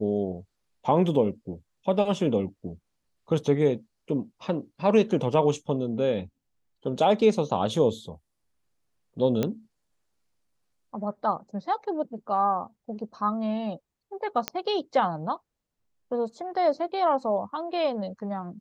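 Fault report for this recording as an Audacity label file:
9.430000	9.430000	pop -13 dBFS
14.480000	14.480000	pop -10 dBFS

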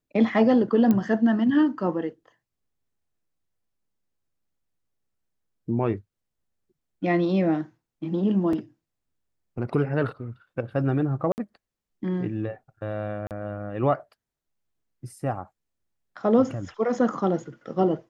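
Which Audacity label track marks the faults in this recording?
0.910000	0.910000	pop -12 dBFS
8.530000	8.530000	gap 3 ms
11.320000	11.380000	gap 59 ms
13.270000	13.310000	gap 38 ms

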